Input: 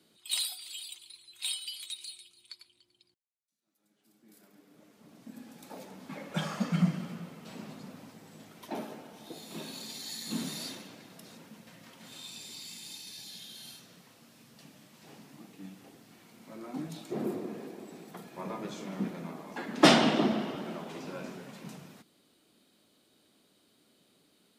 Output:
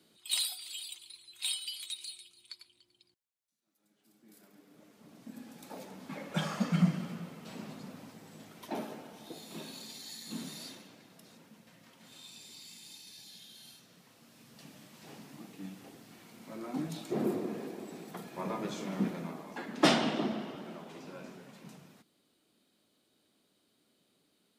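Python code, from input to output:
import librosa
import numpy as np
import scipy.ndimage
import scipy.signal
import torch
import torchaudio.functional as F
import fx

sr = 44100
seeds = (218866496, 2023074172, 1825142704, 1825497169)

y = fx.gain(x, sr, db=fx.line((9.08, 0.0), (10.25, -6.0), (13.75, -6.0), (14.73, 2.0), (19.09, 2.0), (19.98, -6.0)))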